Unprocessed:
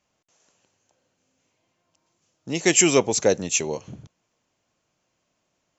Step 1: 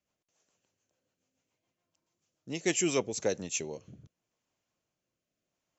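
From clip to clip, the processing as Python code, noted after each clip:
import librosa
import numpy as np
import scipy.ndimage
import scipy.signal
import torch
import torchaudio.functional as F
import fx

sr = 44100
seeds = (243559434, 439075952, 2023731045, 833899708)

y = fx.rotary_switch(x, sr, hz=7.0, then_hz=0.8, switch_at_s=2.42)
y = y * librosa.db_to_amplitude(-9.0)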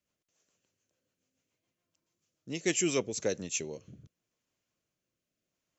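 y = fx.peak_eq(x, sr, hz=820.0, db=-6.5, octaves=0.7)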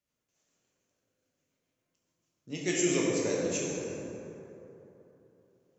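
y = fx.rev_plate(x, sr, seeds[0], rt60_s=3.4, hf_ratio=0.4, predelay_ms=0, drr_db=-5.0)
y = y * librosa.db_to_amplitude(-4.0)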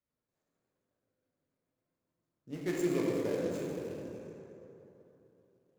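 y = scipy.ndimage.median_filter(x, 15, mode='constant')
y = y * librosa.db_to_amplitude(-2.5)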